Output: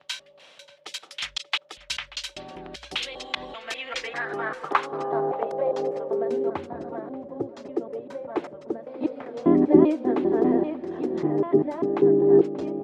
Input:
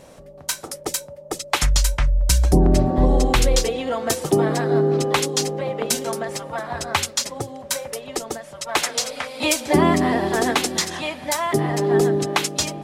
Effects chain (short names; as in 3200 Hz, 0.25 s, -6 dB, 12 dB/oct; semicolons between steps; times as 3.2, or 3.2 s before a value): slices in reverse order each 0.197 s, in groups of 3; high shelf 5300 Hz -12 dB; reverse; upward compressor, threshold -28 dBFS; reverse; outdoor echo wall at 100 m, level -17 dB; band-pass sweep 3200 Hz -> 330 Hz, 3.45–6.56; gain +5 dB